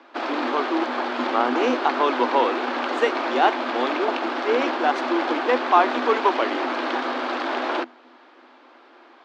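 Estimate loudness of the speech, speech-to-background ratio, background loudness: −24.0 LKFS, 2.0 dB, −26.0 LKFS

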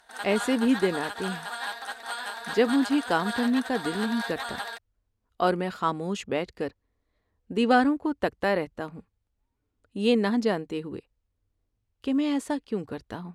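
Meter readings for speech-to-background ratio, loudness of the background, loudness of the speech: 7.5 dB, −34.5 LKFS, −27.0 LKFS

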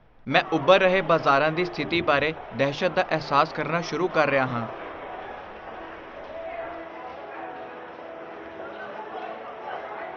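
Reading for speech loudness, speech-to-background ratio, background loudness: −23.0 LKFS, 14.5 dB, −37.5 LKFS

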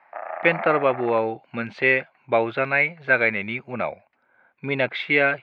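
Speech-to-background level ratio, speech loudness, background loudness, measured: 10.0 dB, −22.5 LKFS, −32.5 LKFS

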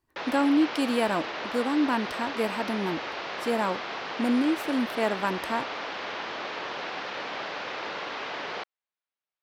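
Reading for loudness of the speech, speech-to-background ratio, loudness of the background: −28.0 LKFS, 6.0 dB, −34.0 LKFS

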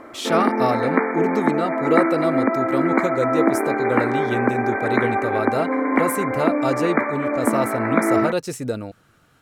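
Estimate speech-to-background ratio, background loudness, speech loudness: −3.5 dB, −21.5 LKFS, −25.0 LKFS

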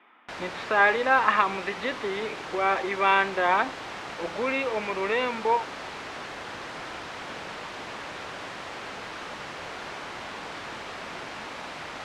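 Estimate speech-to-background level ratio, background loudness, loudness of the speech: 12.0 dB, −37.0 LKFS, −25.0 LKFS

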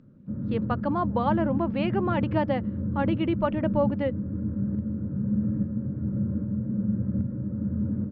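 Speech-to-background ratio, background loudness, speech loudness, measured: 1.0 dB, −29.5 LKFS, −28.5 LKFS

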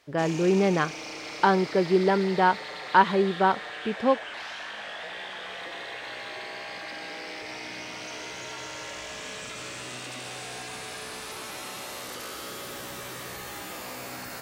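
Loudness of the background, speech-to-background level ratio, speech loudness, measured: −36.5 LKFS, 12.5 dB, −24.0 LKFS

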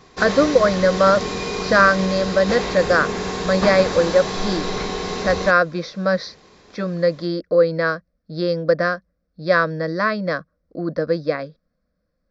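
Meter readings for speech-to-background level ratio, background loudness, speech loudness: 6.0 dB, −25.5 LKFS, −19.5 LKFS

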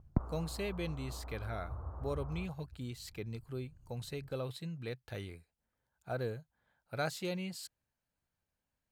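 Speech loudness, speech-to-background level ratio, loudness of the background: −41.5 LKFS, 3.5 dB, −45.0 LKFS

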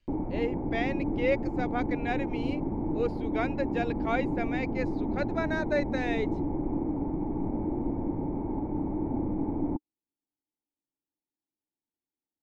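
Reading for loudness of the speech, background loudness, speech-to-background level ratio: −34.0 LKFS, −32.0 LKFS, −2.0 dB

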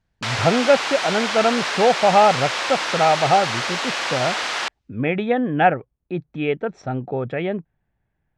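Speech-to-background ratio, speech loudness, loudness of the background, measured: 3.0 dB, −20.5 LKFS, −23.5 LKFS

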